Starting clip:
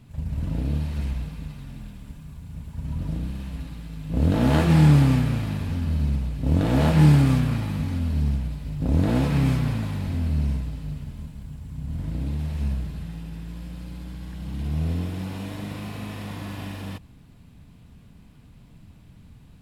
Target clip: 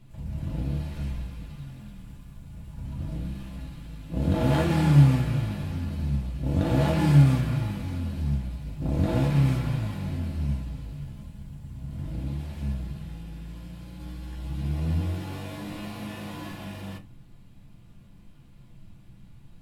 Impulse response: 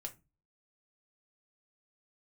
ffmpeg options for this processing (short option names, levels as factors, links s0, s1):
-filter_complex "[0:a]asettb=1/sr,asplit=3[s0][s1][s2];[s0]atrim=end=13.984[s3];[s1]atrim=start=13.98:end=16.52,asetpts=PTS-STARTPTS,afade=t=in:d=0.004:c=qsin,afade=t=out:st=2.536:d=0.004:c=qsin,asplit=2[s4][s5];[s5]adelay=13,volume=0.794[s6];[s4][s6]amix=inputs=2:normalize=0,atrim=end_sample=112014[s7];[s2]atrim=start=16.516[s8];[s3][s7]acrossfade=d=0.004:c1=hsin:c2=qsin[s9];[s9][s8]acrossfade=d=0.004:c1=qsin:c2=hsin[s10];[1:a]atrim=start_sample=2205[s11];[s10][s11]afir=irnorm=-1:irlink=0"